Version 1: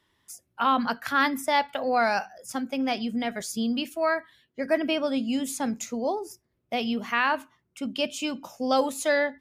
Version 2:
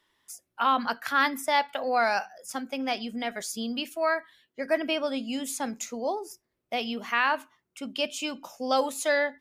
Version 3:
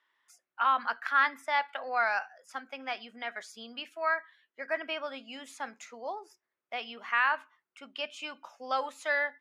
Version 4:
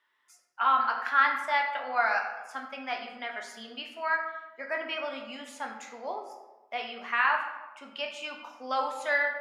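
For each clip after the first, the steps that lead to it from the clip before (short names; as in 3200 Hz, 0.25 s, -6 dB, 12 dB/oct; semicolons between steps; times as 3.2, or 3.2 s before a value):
bell 93 Hz -11.5 dB 2.8 oct
band-pass 1500 Hz, Q 1.2
reverb RT60 1.1 s, pre-delay 6 ms, DRR 1.5 dB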